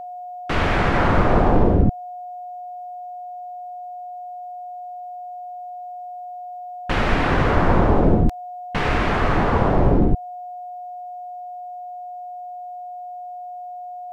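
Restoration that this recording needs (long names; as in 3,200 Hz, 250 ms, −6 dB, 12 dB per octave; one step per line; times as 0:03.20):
notch filter 720 Hz, Q 30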